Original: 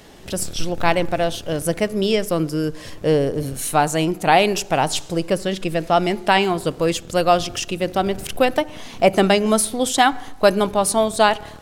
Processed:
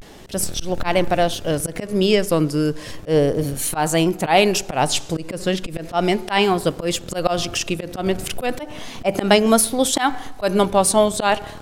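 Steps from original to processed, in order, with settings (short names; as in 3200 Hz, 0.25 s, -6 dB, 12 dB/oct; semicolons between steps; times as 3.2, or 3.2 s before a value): vibrato 0.34 Hz 60 cents; auto swell 0.122 s; gain +2.5 dB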